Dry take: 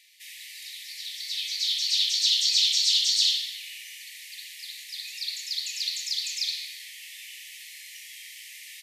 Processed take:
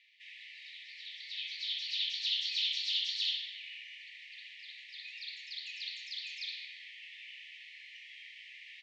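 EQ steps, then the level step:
transistor ladder low-pass 3,600 Hz, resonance 30%
0.0 dB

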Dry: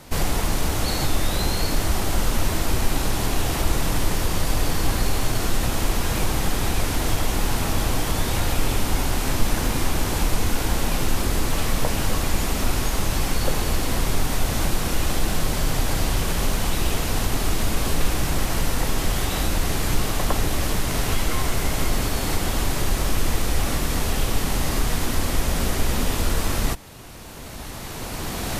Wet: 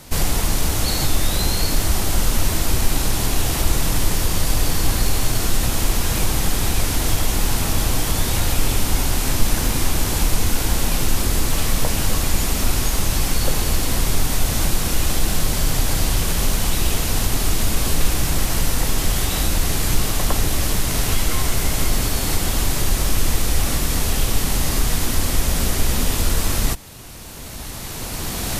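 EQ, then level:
low-shelf EQ 220 Hz +4.5 dB
high-shelf EQ 3,100 Hz +8 dB
−1.0 dB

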